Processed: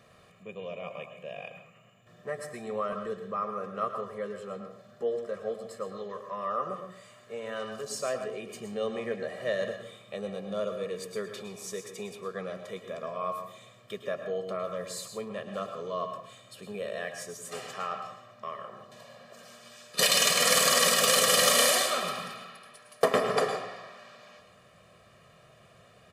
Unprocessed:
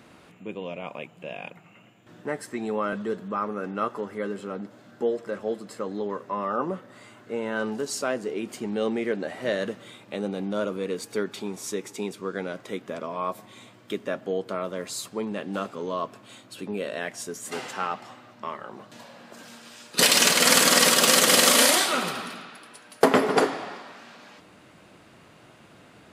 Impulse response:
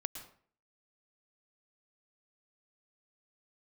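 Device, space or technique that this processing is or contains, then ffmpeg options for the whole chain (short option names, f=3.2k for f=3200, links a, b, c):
microphone above a desk: -filter_complex "[0:a]aecho=1:1:1.7:0.86[a];[1:a]atrim=start_sample=2205[b];[a][b]afir=irnorm=-1:irlink=0,asettb=1/sr,asplit=3[c][d][e];[c]atrim=end=5.974[f];[d]atrim=start=5.97:end=7.84,asetpts=PTS-STARTPTS,afade=t=in:d=0.004:c=qsin,afade=t=out:st=1.866:d=0.004:c=qsin,tiltshelf=f=1.2k:g=-3.5[g];[e]atrim=start=7.836[h];[f][g]acrossfade=d=0.004:c1=hsin:c2=qsin[i];[i][h]acrossfade=d=0.004:c1=qsin:c2=hsin,volume=-6.5dB"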